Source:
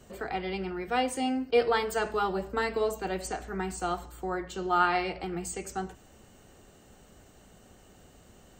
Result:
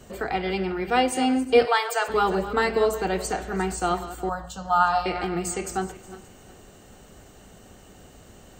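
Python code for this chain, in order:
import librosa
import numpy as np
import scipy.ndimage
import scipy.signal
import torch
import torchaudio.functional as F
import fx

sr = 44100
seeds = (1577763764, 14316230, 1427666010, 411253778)

y = fx.reverse_delay_fb(x, sr, ms=181, feedback_pct=50, wet_db=-13.5)
y = fx.highpass(y, sr, hz=590.0, slope=24, at=(1.65, 2.07), fade=0.02)
y = fx.fixed_phaser(y, sr, hz=890.0, stages=4, at=(4.29, 5.06))
y = y * librosa.db_to_amplitude(6.5)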